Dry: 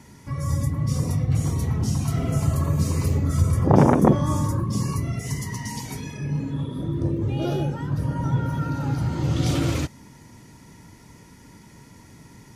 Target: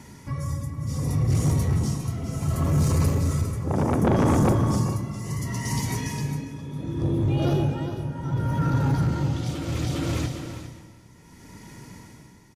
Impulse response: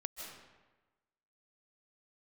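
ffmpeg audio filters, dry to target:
-filter_complex "[0:a]aecho=1:1:406|812|1218|1624:0.631|0.183|0.0531|0.0154,tremolo=f=0.68:d=0.73,asoftclip=type=tanh:threshold=-18dB,asplit=2[link_01][link_02];[1:a]atrim=start_sample=2205[link_03];[link_02][link_03]afir=irnorm=-1:irlink=0,volume=-5dB[link_04];[link_01][link_04]amix=inputs=2:normalize=0"

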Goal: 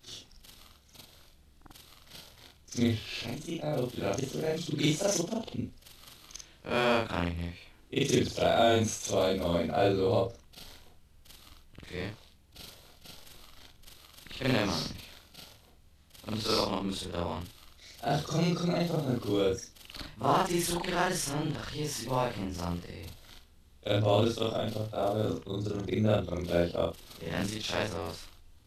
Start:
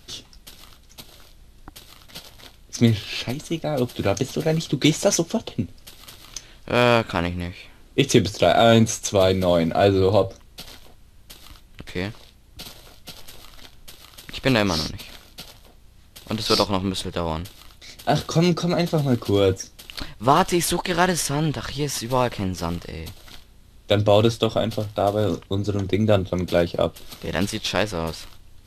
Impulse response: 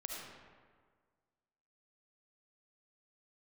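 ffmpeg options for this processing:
-af "afftfilt=real='re':imag='-im':win_size=4096:overlap=0.75,volume=-4.5dB"

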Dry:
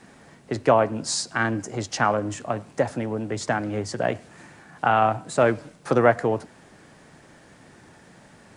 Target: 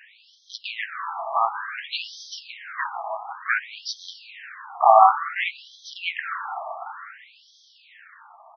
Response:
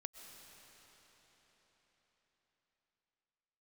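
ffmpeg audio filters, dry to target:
-filter_complex "[0:a]aecho=1:1:266|532:0.0794|0.0167,asplit=3[link_01][link_02][link_03];[link_02]asetrate=37084,aresample=44100,atempo=1.18921,volume=-8dB[link_04];[link_03]asetrate=66075,aresample=44100,atempo=0.66742,volume=-7dB[link_05];[link_01][link_04][link_05]amix=inputs=3:normalize=0,asplit=2[link_06][link_07];[1:a]atrim=start_sample=2205[link_08];[link_07][link_08]afir=irnorm=-1:irlink=0,volume=4.5dB[link_09];[link_06][link_09]amix=inputs=2:normalize=0,afftfilt=real='re*between(b*sr/1024,880*pow(4500/880,0.5+0.5*sin(2*PI*0.56*pts/sr))/1.41,880*pow(4500/880,0.5+0.5*sin(2*PI*0.56*pts/sr))*1.41)':imag='im*between(b*sr/1024,880*pow(4500/880,0.5+0.5*sin(2*PI*0.56*pts/sr))/1.41,880*pow(4500/880,0.5+0.5*sin(2*PI*0.56*pts/sr))*1.41)':win_size=1024:overlap=0.75,volume=1.5dB"

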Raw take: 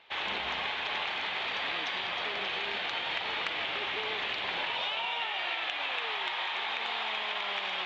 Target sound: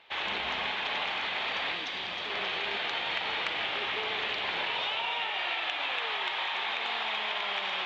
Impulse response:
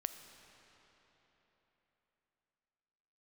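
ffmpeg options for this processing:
-filter_complex "[1:a]atrim=start_sample=2205[link_01];[0:a][link_01]afir=irnorm=-1:irlink=0,asettb=1/sr,asplit=3[link_02][link_03][link_04];[link_02]atrim=end=1.734[link_05];[link_03]atrim=start=1.73:end=2.3,asetpts=PTS-STARTPTS,afade=type=in:duration=0.004:curve=qsin,afade=type=out:start_time=0.566:duration=0.004:curve=qsin,acrossover=split=430|3000[link_06][link_07][link_08];[link_07]acompressor=threshold=-40dB:ratio=6[link_09];[link_06][link_09][link_08]amix=inputs=3:normalize=0[link_10];[link_04]atrim=start=2.296[link_11];[link_05][link_10]acrossfade=duration=0.004:curve1=hsin:curve2=qsin[link_12];[link_12][link_11]acrossfade=duration=0.004:curve1=qsin:curve2=hsin,volume=2.5dB"

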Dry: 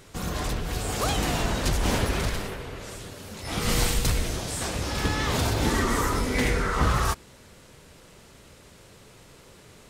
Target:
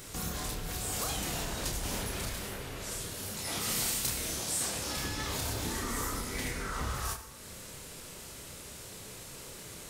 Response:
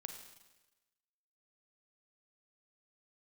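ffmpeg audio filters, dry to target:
-filter_complex "[0:a]asettb=1/sr,asplit=3[link_01][link_02][link_03];[link_01]atrim=end=3.424[link_04];[link_02]atrim=start=3.42:end=4.97,asetpts=PTS-STARTPTS,afade=type=in:duration=0.004:curve=qsin,afade=type=out:start_time=1.546:duration=0.004:curve=qsin,highpass=frequency=160:poles=1[link_05];[link_03]atrim=start=4.966[link_06];[link_04][link_05]acrossfade=duration=0.004:curve1=hsin:curve2=qsin[link_07];[link_07][link_06]acrossfade=duration=0.004:curve1=qsin:curve2=hsin,acompressor=threshold=-42dB:ratio=2.5,crystalizer=i=2:c=0,asplit=2[link_08][link_09];[1:a]atrim=start_sample=2205,adelay=30[link_10];[link_09][link_10]afir=irnorm=-1:irlink=0,volume=0dB[link_11];[link_08][link_11]amix=inputs=2:normalize=0"

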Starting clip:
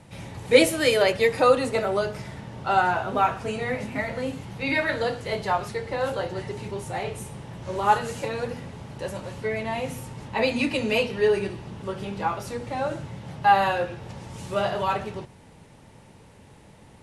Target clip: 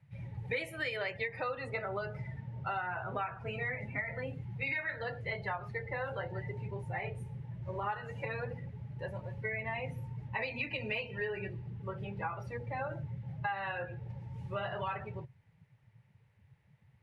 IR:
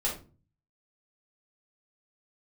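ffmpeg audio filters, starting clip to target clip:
-af "afftdn=noise_reduction=18:noise_floor=-35,equalizer=frequency=125:width_type=o:width=1:gain=9,equalizer=frequency=250:width_type=o:width=1:gain=-9,equalizer=frequency=2000:width_type=o:width=1:gain=11,equalizer=frequency=8000:width_type=o:width=1:gain=-8,acompressor=threshold=-25dB:ratio=8,volume=-8dB"

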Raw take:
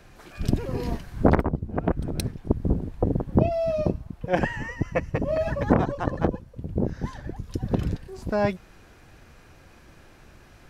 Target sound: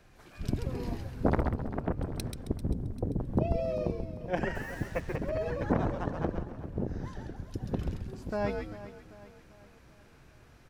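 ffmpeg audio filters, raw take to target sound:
ffmpeg -i in.wav -filter_complex "[0:a]asettb=1/sr,asplit=3[link_01][link_02][link_03];[link_01]atrim=end=2.494[link_04];[link_02]atrim=start=2.49:end=3.19,asetpts=PTS-STARTPTS,afade=type=in:duration=0.004:curve=qsin,afade=type=out:start_time=0.696:duration=0.004:curve=qsin,equalizer=frequency=2100:width=0.49:gain=-10.5[link_05];[link_03]atrim=start=3.186[link_06];[link_04][link_05]acrossfade=duration=0.004:curve1=hsin:curve2=qsin[link_07];[link_07][link_06]acrossfade=duration=0.004:curve1=qsin:curve2=hsin,asplit=2[link_08][link_09];[link_09]aecho=0:1:393|786|1179|1572|1965:0.178|0.0871|0.0427|0.0209|0.0103[link_10];[link_08][link_10]amix=inputs=2:normalize=0,asettb=1/sr,asplit=3[link_11][link_12][link_13];[link_11]atrim=end=4.554[link_14];[link_12]atrim=start=4.55:end=5.16,asetpts=PTS-STARTPTS,afade=type=in:duration=0.004:curve=qsin,afade=type=out:start_time=0.606:duration=0.004:curve=qsin,acrusher=bits=6:mix=0:aa=0.5[link_15];[link_13]atrim=start=5.156[link_16];[link_14][link_15]acrossfade=duration=0.004:curve1=hsin:curve2=qsin[link_17];[link_17][link_16]acrossfade=duration=0.004:curve1=qsin:curve2=hsin,asplit=2[link_18][link_19];[link_19]asplit=4[link_20][link_21][link_22][link_23];[link_20]adelay=134,afreqshift=-150,volume=-4.5dB[link_24];[link_21]adelay=268,afreqshift=-300,volume=-14.1dB[link_25];[link_22]adelay=402,afreqshift=-450,volume=-23.8dB[link_26];[link_23]adelay=536,afreqshift=-600,volume=-33.4dB[link_27];[link_24][link_25][link_26][link_27]amix=inputs=4:normalize=0[link_28];[link_18][link_28]amix=inputs=2:normalize=0,volume=-8.5dB" out.wav

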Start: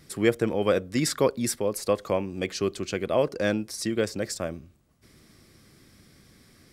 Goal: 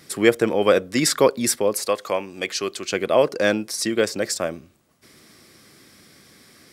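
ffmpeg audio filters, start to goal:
ffmpeg -i in.wav -af "asetnsamples=nb_out_samples=441:pad=0,asendcmd='1.86 highpass f 940;2.92 highpass f 360',highpass=frequency=320:poles=1,volume=8dB" out.wav

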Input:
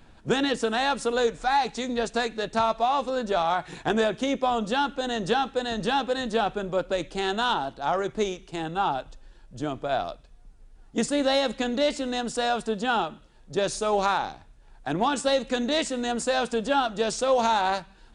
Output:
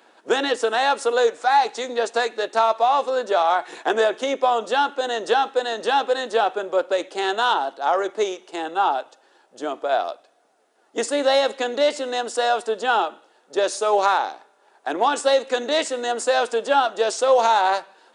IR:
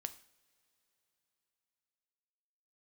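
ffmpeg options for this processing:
-filter_complex "[0:a]highpass=frequency=360:width=0.5412,highpass=frequency=360:width=1.3066,bandreject=frequency=2400:width=29,asplit=2[link_01][link_02];[1:a]atrim=start_sample=2205,lowpass=2400[link_03];[link_02][link_03]afir=irnorm=-1:irlink=0,volume=-6.5dB[link_04];[link_01][link_04]amix=inputs=2:normalize=0,volume=3.5dB"

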